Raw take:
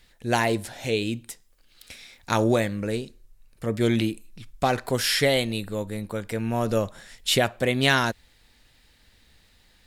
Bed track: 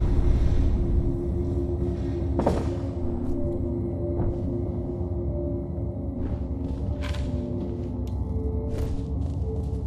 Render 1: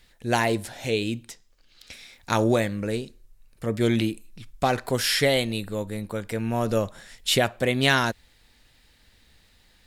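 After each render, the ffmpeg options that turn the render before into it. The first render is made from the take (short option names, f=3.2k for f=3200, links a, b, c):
-filter_complex "[0:a]asettb=1/sr,asplit=3[a][b][c];[a]atrim=end=1.254[d];[b]atrim=start=1.25:end=1.93,asetpts=PTS-STARTPTS,afade=t=in:d=0.004:c=qsin,afade=t=out:st=0.676:d=0.004:c=qsin,highshelf=f=7.7k:t=q:w=1.5:g=-7[e];[c]atrim=start=1.926[f];[d][e]acrossfade=d=0.004:c1=hsin:c2=qsin[g];[g][f]acrossfade=d=0.004:c1=qsin:c2=hsin"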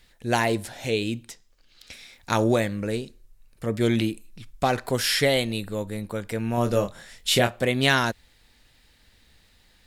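-filter_complex "[0:a]asettb=1/sr,asplit=3[a][b][c];[a]atrim=end=6.554[d];[b]atrim=start=6.55:end=7.65,asetpts=PTS-STARTPTS,afade=t=in:d=0.004:c=qsin,afade=t=out:st=1.096:d=0.004:c=qsin,asplit=2[e][f];[f]adelay=25,volume=-6.5dB[g];[e][g]amix=inputs=2:normalize=0,atrim=end_sample=48510[h];[c]atrim=start=7.646[i];[d][h]acrossfade=d=0.004:c1=hsin:c2=qsin[j];[j][i]acrossfade=d=0.004:c1=qsin:c2=hsin"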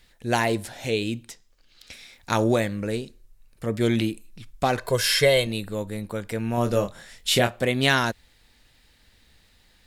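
-filter_complex "[0:a]asettb=1/sr,asplit=3[a][b][c];[a]atrim=end=4.784[d];[b]atrim=start=4.78:end=5.47,asetpts=PTS-STARTPTS,afade=t=in:d=0.004:c=qsin,afade=t=out:st=0.686:d=0.004:c=qsin,aecho=1:1:1.9:0.65,atrim=end_sample=30429[e];[c]atrim=start=5.466[f];[d][e]acrossfade=d=0.004:c1=hsin:c2=qsin[g];[g][f]acrossfade=d=0.004:c1=qsin:c2=hsin"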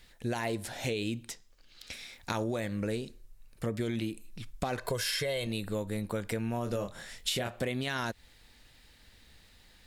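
-af "alimiter=limit=-15dB:level=0:latency=1:release=33,acompressor=threshold=-29dB:ratio=10"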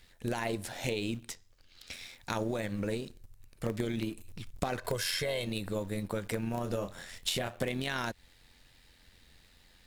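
-filter_complex "[0:a]tremolo=f=89:d=0.462,asplit=2[a][b];[b]acrusher=bits=5:dc=4:mix=0:aa=0.000001,volume=-10dB[c];[a][c]amix=inputs=2:normalize=0"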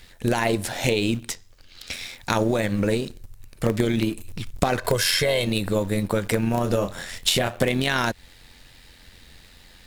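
-af "volume=11.5dB"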